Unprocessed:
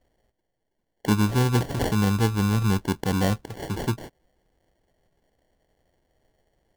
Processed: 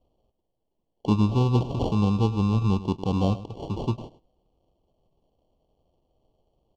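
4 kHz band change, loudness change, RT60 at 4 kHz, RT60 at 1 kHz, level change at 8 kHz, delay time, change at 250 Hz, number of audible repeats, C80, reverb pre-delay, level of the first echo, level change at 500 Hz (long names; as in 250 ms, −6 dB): −5.5 dB, −0.5 dB, no reverb audible, no reverb audible, below −10 dB, 105 ms, 0.0 dB, 1, no reverb audible, no reverb audible, −15.5 dB, −0.5 dB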